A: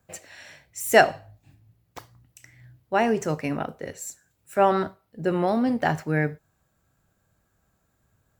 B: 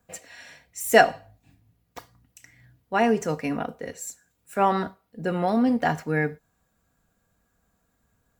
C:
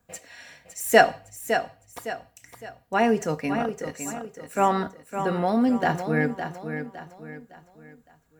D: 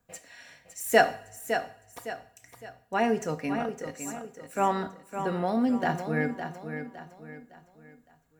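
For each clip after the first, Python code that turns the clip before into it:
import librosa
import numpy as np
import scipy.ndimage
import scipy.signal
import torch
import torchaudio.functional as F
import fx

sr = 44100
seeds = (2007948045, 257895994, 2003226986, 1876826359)

y1 = x + 0.46 * np.pad(x, (int(4.2 * sr / 1000.0), 0))[:len(x)]
y1 = y1 * librosa.db_to_amplitude(-1.0)
y2 = fx.echo_feedback(y1, sr, ms=560, feedback_pct=38, wet_db=-8.5)
y3 = fx.rev_double_slope(y2, sr, seeds[0], early_s=0.51, late_s=1.8, knee_db=-19, drr_db=12.0)
y3 = y3 * librosa.db_to_amplitude(-4.5)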